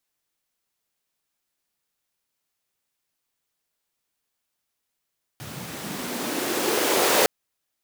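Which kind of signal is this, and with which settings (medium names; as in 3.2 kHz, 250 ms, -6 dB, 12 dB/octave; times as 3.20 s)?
swept filtered noise pink, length 1.86 s highpass, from 110 Hz, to 470 Hz, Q 2.4, linear, gain ramp +21.5 dB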